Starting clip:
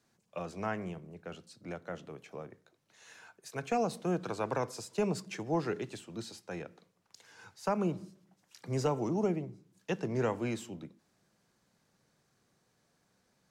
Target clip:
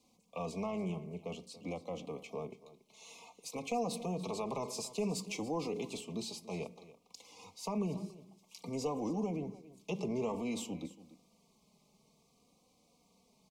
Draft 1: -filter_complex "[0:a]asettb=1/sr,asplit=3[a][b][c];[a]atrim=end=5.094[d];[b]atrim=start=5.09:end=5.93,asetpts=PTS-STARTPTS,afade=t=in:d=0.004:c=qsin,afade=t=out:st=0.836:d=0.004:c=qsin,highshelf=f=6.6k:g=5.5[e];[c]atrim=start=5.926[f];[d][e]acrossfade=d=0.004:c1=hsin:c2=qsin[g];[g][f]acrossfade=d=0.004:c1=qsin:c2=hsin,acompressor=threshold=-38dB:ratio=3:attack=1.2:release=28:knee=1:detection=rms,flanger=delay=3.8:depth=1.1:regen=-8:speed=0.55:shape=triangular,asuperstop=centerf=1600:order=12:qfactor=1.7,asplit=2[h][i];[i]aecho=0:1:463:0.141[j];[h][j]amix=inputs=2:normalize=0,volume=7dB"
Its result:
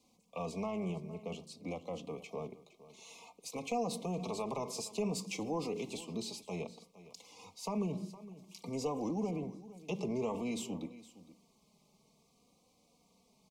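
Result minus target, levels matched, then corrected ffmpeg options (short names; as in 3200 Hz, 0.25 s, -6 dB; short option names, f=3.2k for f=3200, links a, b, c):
echo 0.179 s late
-filter_complex "[0:a]asettb=1/sr,asplit=3[a][b][c];[a]atrim=end=5.094[d];[b]atrim=start=5.09:end=5.93,asetpts=PTS-STARTPTS,afade=t=in:d=0.004:c=qsin,afade=t=out:st=0.836:d=0.004:c=qsin,highshelf=f=6.6k:g=5.5[e];[c]atrim=start=5.926[f];[d][e]acrossfade=d=0.004:c1=hsin:c2=qsin[g];[g][f]acrossfade=d=0.004:c1=qsin:c2=hsin,acompressor=threshold=-38dB:ratio=3:attack=1.2:release=28:knee=1:detection=rms,flanger=delay=3.8:depth=1.1:regen=-8:speed=0.55:shape=triangular,asuperstop=centerf=1600:order=12:qfactor=1.7,asplit=2[h][i];[i]aecho=0:1:284:0.141[j];[h][j]amix=inputs=2:normalize=0,volume=7dB"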